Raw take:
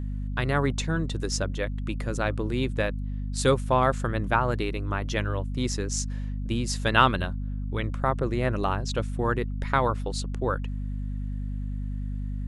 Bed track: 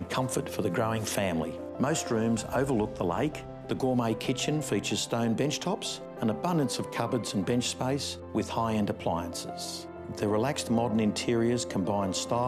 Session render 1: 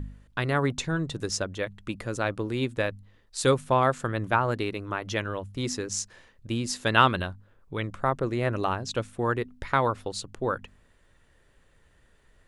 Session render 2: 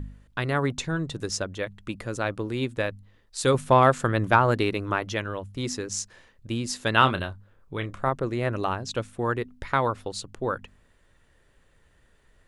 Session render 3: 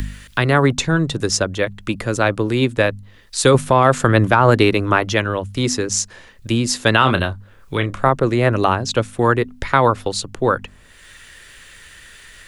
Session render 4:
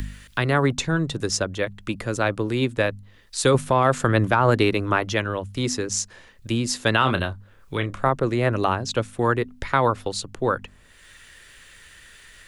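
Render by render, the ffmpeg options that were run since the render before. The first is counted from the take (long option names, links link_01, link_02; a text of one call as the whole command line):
ffmpeg -i in.wav -af "bandreject=frequency=50:width_type=h:width=4,bandreject=frequency=100:width_type=h:width=4,bandreject=frequency=150:width_type=h:width=4,bandreject=frequency=200:width_type=h:width=4,bandreject=frequency=250:width_type=h:width=4" out.wav
ffmpeg -i in.wav -filter_complex "[0:a]asettb=1/sr,asplit=3[link_01][link_02][link_03];[link_01]atrim=end=3.544[link_04];[link_02]atrim=start=3.54:end=5.05,asetpts=PTS-STARTPTS,afade=type=in:duration=0.004:curve=qsin,afade=type=out:start_time=1.506:duration=0.004:curve=qsin,acontrast=30[link_05];[link_03]atrim=start=5.046[link_06];[link_04][link_05]acrossfade=duration=0.004:curve1=hsin:curve2=qsin[link_07];[link_07][link_06]acrossfade=duration=0.004:curve1=qsin:curve2=hsin,asettb=1/sr,asplit=3[link_08][link_09][link_10];[link_08]atrim=end=6.984[link_11];[link_09]atrim=start=6.98:end=8.09,asetpts=PTS-STARTPTS,afade=type=in:duration=0.004:curve=qsin,afade=type=out:start_time=1.106:duration=0.004:curve=qsin,asplit=2[link_12][link_13];[link_13]adelay=30,volume=-11dB[link_14];[link_12][link_14]amix=inputs=2:normalize=0,atrim=end_sample=48951[link_15];[link_10]atrim=start=8.086[link_16];[link_11][link_15]acrossfade=duration=0.004:curve1=hsin:curve2=qsin[link_17];[link_17][link_16]acrossfade=duration=0.004:curve1=qsin:curve2=hsin" out.wav
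ffmpeg -i in.wav -filter_complex "[0:a]acrossover=split=250|870|1500[link_01][link_02][link_03][link_04];[link_04]acompressor=mode=upward:threshold=-39dB:ratio=2.5[link_05];[link_01][link_02][link_03][link_05]amix=inputs=4:normalize=0,alimiter=level_in=11dB:limit=-1dB:release=50:level=0:latency=1" out.wav
ffmpeg -i in.wav -af "volume=-5.5dB" out.wav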